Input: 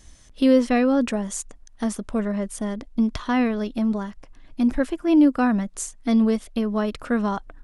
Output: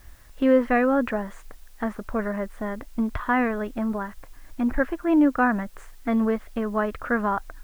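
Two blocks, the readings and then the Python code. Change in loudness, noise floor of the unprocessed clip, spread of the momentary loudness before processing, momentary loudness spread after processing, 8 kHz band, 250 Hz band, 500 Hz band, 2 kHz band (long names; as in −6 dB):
−2.0 dB, −49 dBFS, 12 LU, 12 LU, below −15 dB, −4.0 dB, 0.0 dB, +4.5 dB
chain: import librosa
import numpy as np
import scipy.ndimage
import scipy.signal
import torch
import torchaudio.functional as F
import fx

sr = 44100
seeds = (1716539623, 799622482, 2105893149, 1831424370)

p1 = fx.curve_eq(x, sr, hz=(110.0, 170.0, 1700.0, 5800.0), db=(0, -8, 4, -28))
p2 = fx.quant_dither(p1, sr, seeds[0], bits=8, dither='triangular')
y = p1 + (p2 * 10.0 ** (-11.0 / 20.0))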